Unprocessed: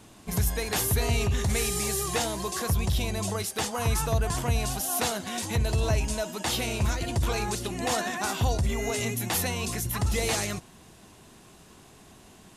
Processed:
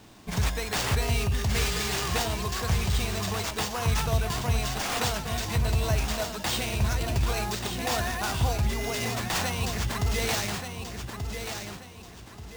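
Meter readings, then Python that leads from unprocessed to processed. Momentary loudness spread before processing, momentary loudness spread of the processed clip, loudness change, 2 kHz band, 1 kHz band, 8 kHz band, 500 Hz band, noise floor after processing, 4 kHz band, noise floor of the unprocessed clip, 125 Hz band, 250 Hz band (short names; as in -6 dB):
4 LU, 9 LU, -0.5 dB, +2.0 dB, +0.5 dB, -3.0 dB, -1.5 dB, -45 dBFS, +2.0 dB, -53 dBFS, +0.5 dB, -1.0 dB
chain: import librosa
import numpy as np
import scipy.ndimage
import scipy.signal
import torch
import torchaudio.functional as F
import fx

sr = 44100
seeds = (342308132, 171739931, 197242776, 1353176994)

p1 = x + fx.echo_feedback(x, sr, ms=1183, feedback_pct=31, wet_db=-7.5, dry=0)
p2 = fx.sample_hold(p1, sr, seeds[0], rate_hz=12000.0, jitter_pct=0)
y = fx.dynamic_eq(p2, sr, hz=350.0, q=1.0, threshold_db=-39.0, ratio=4.0, max_db=-4)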